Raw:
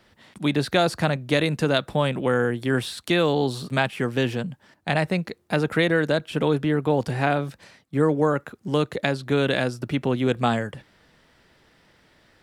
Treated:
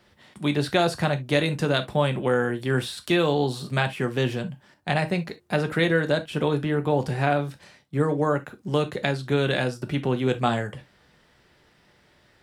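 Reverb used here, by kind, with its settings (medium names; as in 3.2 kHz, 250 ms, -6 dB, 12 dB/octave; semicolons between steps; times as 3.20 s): gated-style reverb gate 90 ms falling, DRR 7 dB; trim -2 dB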